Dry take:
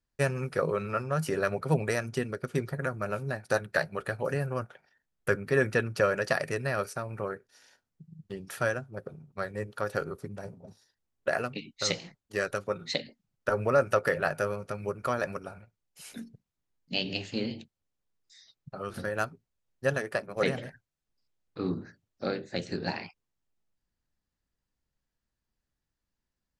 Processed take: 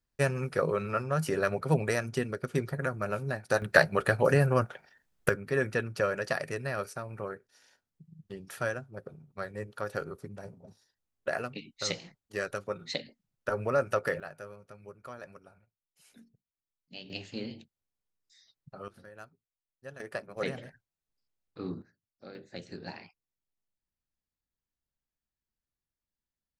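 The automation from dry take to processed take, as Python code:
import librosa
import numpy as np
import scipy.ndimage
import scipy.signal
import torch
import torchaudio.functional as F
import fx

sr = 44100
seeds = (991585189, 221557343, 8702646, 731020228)

y = fx.gain(x, sr, db=fx.steps((0.0, 0.0), (3.62, 7.0), (5.29, -3.5), (14.2, -15.0), (17.1, -6.0), (18.88, -18.0), (20.0, -6.0), (21.82, -16.5), (22.35, -9.5)))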